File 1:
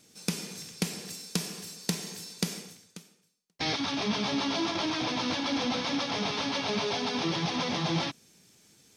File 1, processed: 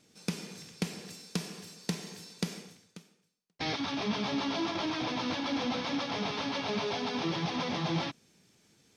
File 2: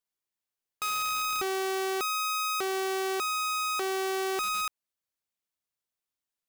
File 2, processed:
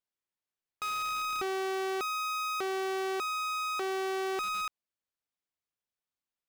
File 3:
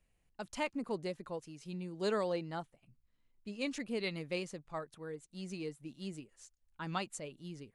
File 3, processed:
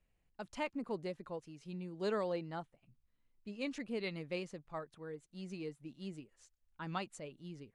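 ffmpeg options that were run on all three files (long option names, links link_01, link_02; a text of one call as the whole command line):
ffmpeg -i in.wav -af "highshelf=frequency=6000:gain=-10.5,volume=-2dB" out.wav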